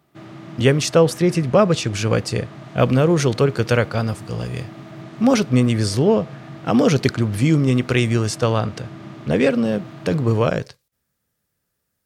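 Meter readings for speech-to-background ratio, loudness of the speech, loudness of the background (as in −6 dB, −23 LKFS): 19.0 dB, −19.0 LKFS, −38.0 LKFS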